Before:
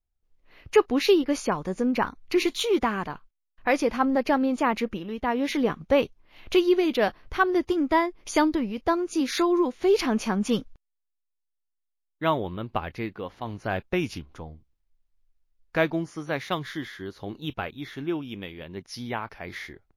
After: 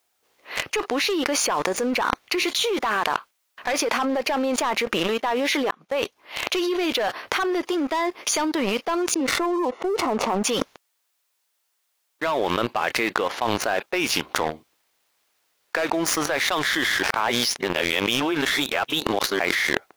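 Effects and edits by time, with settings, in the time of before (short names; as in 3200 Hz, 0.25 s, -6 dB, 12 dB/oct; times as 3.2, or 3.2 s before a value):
5.71–6.63 fade in
9.14–10.44 polynomial smoothing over 65 samples
17.03–19.39 reverse
whole clip: HPF 520 Hz 12 dB/oct; sample leveller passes 3; fast leveller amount 100%; gain -10.5 dB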